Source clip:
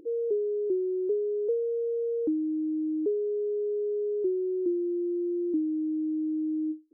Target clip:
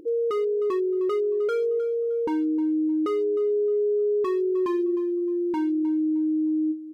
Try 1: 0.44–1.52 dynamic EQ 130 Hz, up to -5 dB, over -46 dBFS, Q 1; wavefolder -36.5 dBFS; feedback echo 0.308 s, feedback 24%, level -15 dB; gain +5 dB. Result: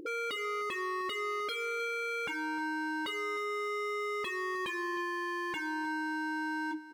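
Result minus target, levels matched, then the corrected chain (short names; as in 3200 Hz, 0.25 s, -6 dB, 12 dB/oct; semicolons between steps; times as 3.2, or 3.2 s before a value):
wavefolder: distortion +17 dB
0.44–1.52 dynamic EQ 130 Hz, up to -5 dB, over -46 dBFS, Q 1; wavefolder -26 dBFS; feedback echo 0.308 s, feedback 24%, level -15 dB; gain +5 dB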